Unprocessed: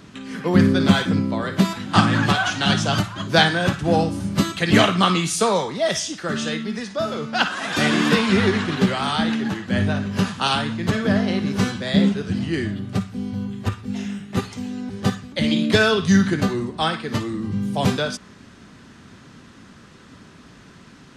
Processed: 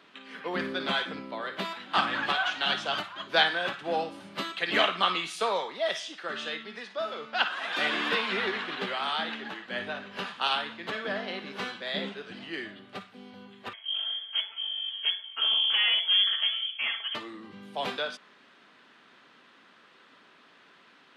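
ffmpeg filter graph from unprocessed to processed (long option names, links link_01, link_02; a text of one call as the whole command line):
ffmpeg -i in.wav -filter_complex "[0:a]asettb=1/sr,asplit=3[link_01][link_02][link_03];[link_01]atrim=end=13.734[link_04];[link_02]atrim=start=13.73:end=17.15,asetpts=PTS-STARTPTS,afade=type=in:duration=0.004:curve=qsin,afade=type=out:start_time=3.416:duration=0.004:curve=qsin,aecho=1:1:4.4:0.59,atrim=end_sample=150822,aeval=exprs='(tanh(6.31*val(0)+0.65)-tanh(0.65))/6.31':channel_layout=same,lowpass=frequency=2900:width_type=q:width=0.5098,lowpass=frequency=2900:width_type=q:width=0.6013,lowpass=frequency=2900:width_type=q:width=0.9,lowpass=frequency=2900:width_type=q:width=2.563,afreqshift=-3400[link_05];[link_03]atrim=start=17.146[link_06];[link_04][link_05]acrossfade=duration=0.004:curve1=hsin:curve2=qsin[link_07];[link_07][link_06]acrossfade=duration=0.004:curve1=qsin:curve2=hsin,highpass=500,highshelf=frequency=4700:width_type=q:width=1.5:gain=-10,volume=-7dB" out.wav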